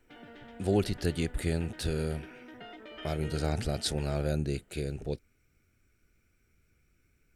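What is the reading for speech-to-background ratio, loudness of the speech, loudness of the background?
15.5 dB, -33.0 LUFS, -48.5 LUFS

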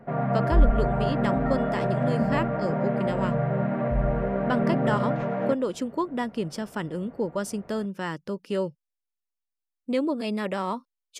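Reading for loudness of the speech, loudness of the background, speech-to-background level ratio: -30.5 LUFS, -26.0 LUFS, -4.5 dB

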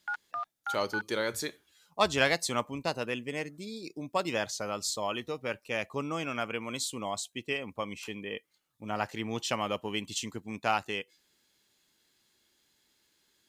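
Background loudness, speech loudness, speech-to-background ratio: -37.5 LUFS, -33.5 LUFS, 4.0 dB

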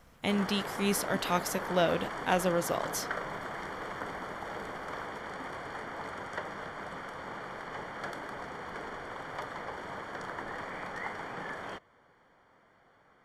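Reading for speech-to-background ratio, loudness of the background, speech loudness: 8.5 dB, -39.5 LUFS, -31.0 LUFS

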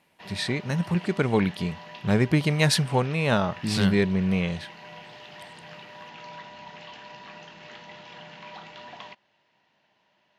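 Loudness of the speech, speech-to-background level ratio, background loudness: -24.5 LUFS, 18.5 dB, -43.0 LUFS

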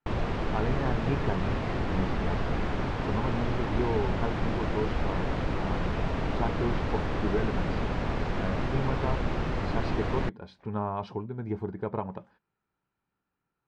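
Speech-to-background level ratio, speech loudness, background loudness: -3.5 dB, -35.0 LUFS, -31.5 LUFS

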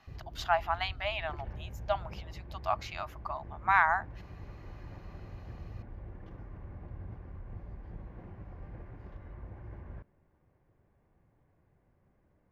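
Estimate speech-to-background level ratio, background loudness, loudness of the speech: 15.0 dB, -47.0 LUFS, -32.0 LUFS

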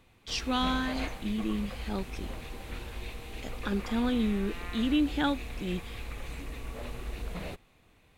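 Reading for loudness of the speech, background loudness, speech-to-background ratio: -32.0 LUFS, -41.0 LUFS, 9.0 dB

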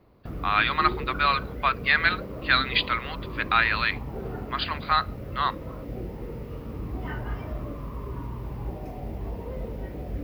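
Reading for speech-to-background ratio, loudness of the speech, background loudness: 11.5 dB, -24.5 LUFS, -36.0 LUFS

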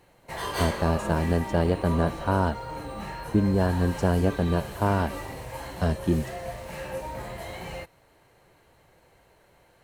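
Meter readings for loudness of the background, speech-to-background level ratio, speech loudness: -35.5 LUFS, 9.5 dB, -26.0 LUFS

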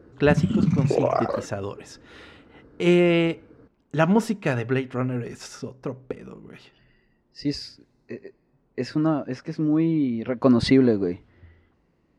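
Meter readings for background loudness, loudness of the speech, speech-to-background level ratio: -23.5 LUFS, -24.0 LUFS, -0.5 dB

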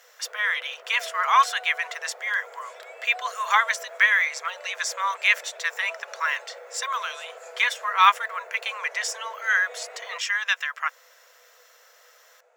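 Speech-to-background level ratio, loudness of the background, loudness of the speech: 18.5 dB, -43.0 LUFS, -24.5 LUFS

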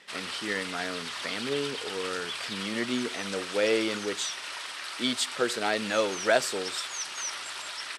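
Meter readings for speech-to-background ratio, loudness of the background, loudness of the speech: 4.5 dB, -35.0 LUFS, -30.5 LUFS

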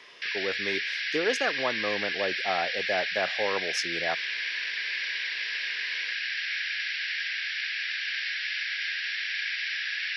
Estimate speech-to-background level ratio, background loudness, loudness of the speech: -2.0 dB, -29.5 LUFS, -31.5 LUFS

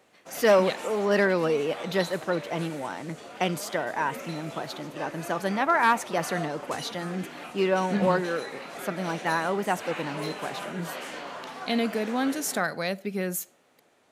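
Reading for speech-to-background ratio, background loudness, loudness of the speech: 11.0 dB, -39.0 LUFS, -28.0 LUFS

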